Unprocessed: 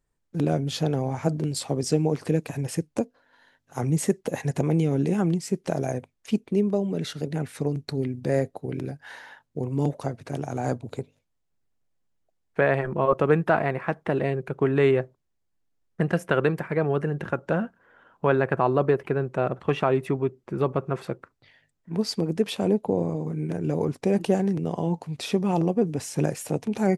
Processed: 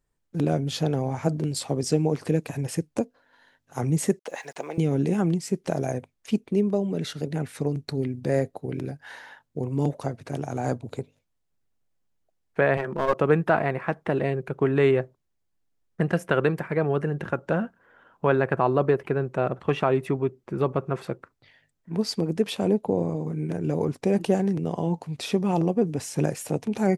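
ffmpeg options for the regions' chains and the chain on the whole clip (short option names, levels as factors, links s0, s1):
-filter_complex "[0:a]asettb=1/sr,asplit=3[s0][s1][s2];[s0]atrim=end=4.194[s3];[s1]atrim=start=4.19:end=4.78,asetpts=PTS-STARTPTS,afade=t=in:d=0.004:c=qsin,afade=t=out:st=0.586:d=0.004:c=qsin,highpass=660,lowpass=6900,aeval=exprs='val(0)*gte(abs(val(0)),0.00158)':c=same[s4];[s2]atrim=start=4.776[s5];[s3][s4]acrossfade=d=0.004:c1=hsin:c2=qsin[s6];[s6][s5]acrossfade=d=0.004:c1=qsin:c2=hsin,asettb=1/sr,asplit=3[s7][s8][s9];[s7]atrim=end=12.774[s10];[s8]atrim=start=12.77:end=13.21,asetpts=PTS-STARTPTS,afade=t=in:d=0.004:c=qsin,afade=t=out:st=0.436:d=0.004:c=qsin,highpass=160,aeval=exprs='clip(val(0),-1,0.0668)':c=same[s11];[s9]atrim=start=13.206[s12];[s10][s11]acrossfade=d=0.004:c1=hsin:c2=qsin[s13];[s13][s12]acrossfade=d=0.004:c1=qsin:c2=hsin"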